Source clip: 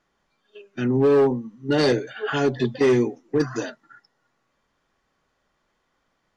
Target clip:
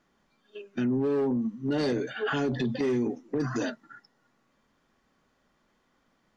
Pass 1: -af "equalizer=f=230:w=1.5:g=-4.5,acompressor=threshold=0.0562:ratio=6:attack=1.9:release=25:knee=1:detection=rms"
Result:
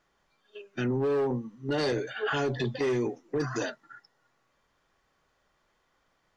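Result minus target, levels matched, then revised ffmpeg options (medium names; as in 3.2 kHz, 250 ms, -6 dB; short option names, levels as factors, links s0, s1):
250 Hz band -4.0 dB
-af "equalizer=f=230:w=1.5:g=7.5,acompressor=threshold=0.0562:ratio=6:attack=1.9:release=25:knee=1:detection=rms"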